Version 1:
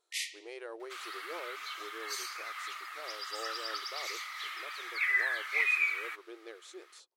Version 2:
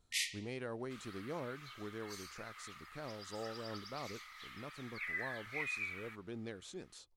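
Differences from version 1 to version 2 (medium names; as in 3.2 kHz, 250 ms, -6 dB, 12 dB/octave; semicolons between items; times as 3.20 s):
speech: remove brick-wall FIR high-pass 320 Hz; second sound -12.0 dB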